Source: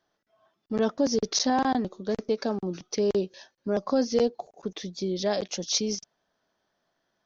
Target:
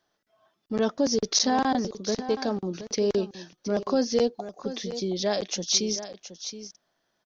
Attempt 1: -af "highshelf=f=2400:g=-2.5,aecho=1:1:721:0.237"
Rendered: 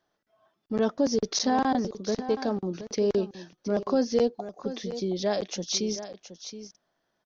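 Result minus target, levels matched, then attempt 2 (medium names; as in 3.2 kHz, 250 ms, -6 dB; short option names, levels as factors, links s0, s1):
4 kHz band -4.0 dB
-af "highshelf=f=2400:g=4,aecho=1:1:721:0.237"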